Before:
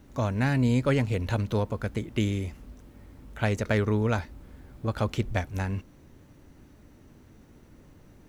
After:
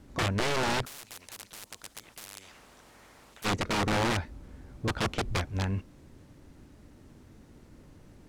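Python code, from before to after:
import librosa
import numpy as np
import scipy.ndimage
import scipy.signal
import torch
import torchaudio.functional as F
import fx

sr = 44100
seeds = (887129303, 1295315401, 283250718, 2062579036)

y = fx.high_shelf(x, sr, hz=5800.0, db=-6.5)
y = (np.mod(10.0 ** (22.0 / 20.0) * y + 1.0, 2.0) - 1.0) / 10.0 ** (22.0 / 20.0)
y = fx.dmg_noise_colour(y, sr, seeds[0], colour='blue', level_db=-62.0)
y = fx.air_absorb(y, sr, metres=60.0)
y = fx.spectral_comp(y, sr, ratio=10.0, at=(0.84, 3.44), fade=0.02)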